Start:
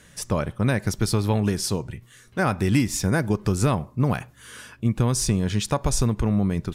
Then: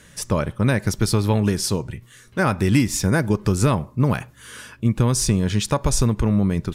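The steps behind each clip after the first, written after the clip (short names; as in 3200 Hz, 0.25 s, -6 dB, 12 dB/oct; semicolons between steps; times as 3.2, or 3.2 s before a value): notch 730 Hz, Q 12; gain +3 dB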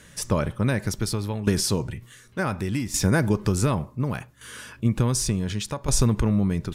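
tremolo saw down 0.68 Hz, depth 75%; transient shaper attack +1 dB, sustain +5 dB; gain -1 dB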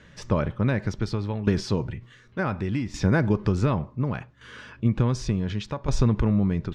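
air absorption 190 m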